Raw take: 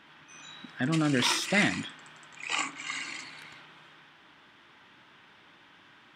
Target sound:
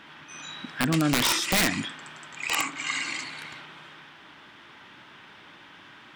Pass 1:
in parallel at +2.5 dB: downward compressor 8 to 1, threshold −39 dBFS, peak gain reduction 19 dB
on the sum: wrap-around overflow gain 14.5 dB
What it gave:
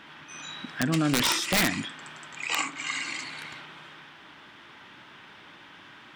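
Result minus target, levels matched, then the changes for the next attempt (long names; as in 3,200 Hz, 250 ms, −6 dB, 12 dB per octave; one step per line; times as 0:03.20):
downward compressor: peak gain reduction +5 dB
change: downward compressor 8 to 1, threshold −33 dBFS, peak gain reduction 14 dB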